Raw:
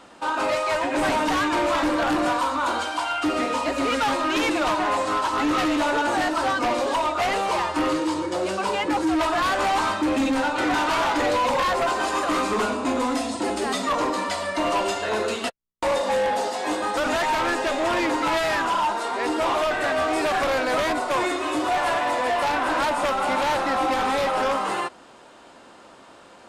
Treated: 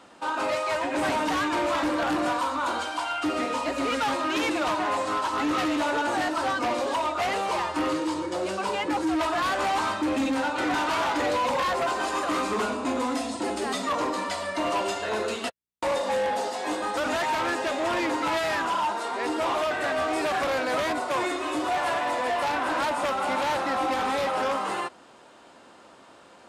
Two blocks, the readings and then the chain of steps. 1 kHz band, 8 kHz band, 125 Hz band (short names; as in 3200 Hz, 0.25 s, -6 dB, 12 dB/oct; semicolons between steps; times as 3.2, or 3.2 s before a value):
-3.5 dB, -3.5 dB, -4.0 dB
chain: HPF 57 Hz; gain -3.5 dB